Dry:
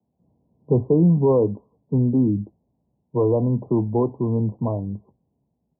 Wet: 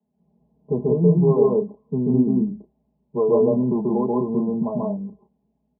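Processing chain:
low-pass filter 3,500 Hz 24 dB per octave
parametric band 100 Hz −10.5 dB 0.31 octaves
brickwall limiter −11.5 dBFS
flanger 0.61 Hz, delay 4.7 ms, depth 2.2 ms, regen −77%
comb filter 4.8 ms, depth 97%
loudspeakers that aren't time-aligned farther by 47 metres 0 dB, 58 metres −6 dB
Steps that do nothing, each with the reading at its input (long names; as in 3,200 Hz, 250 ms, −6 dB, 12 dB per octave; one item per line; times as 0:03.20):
low-pass filter 3,500 Hz: nothing at its input above 1,100 Hz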